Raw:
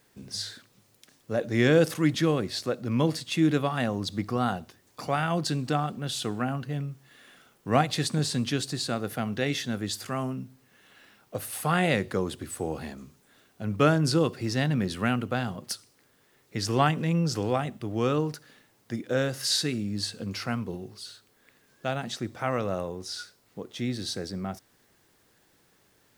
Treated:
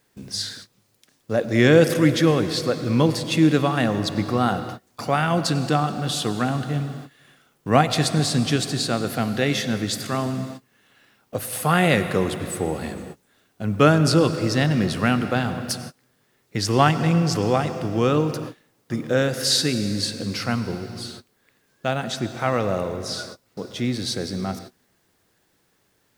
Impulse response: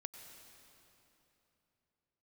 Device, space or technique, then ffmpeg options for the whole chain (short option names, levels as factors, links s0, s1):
keyed gated reverb: -filter_complex "[0:a]asplit=3[s0][s1][s2];[1:a]atrim=start_sample=2205[s3];[s1][s3]afir=irnorm=-1:irlink=0[s4];[s2]apad=whole_len=1154263[s5];[s4][s5]sidechaingate=range=0.0224:threshold=0.00316:ratio=16:detection=peak,volume=2.66[s6];[s0][s6]amix=inputs=2:normalize=0,volume=0.794"